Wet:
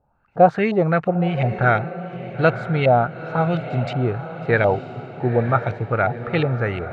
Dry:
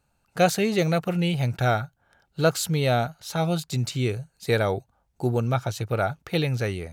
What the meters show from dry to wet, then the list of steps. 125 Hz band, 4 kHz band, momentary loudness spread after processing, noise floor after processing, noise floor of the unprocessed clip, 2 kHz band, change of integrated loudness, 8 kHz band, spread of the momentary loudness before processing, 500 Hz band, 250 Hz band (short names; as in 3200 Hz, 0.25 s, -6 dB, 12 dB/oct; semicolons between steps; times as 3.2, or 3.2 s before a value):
+3.5 dB, -6.0 dB, 9 LU, -48 dBFS, -71 dBFS, +6.5 dB, +5.0 dB, under -25 dB, 7 LU, +5.5 dB, +3.5 dB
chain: LFO low-pass saw up 2.8 Hz 660–2500 Hz; diffused feedback echo 0.929 s, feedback 52%, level -12 dB; gain +3 dB